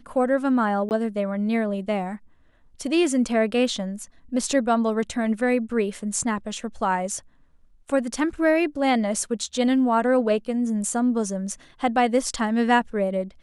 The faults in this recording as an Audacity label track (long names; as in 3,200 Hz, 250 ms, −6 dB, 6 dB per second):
0.890000	0.910000	drop-out 19 ms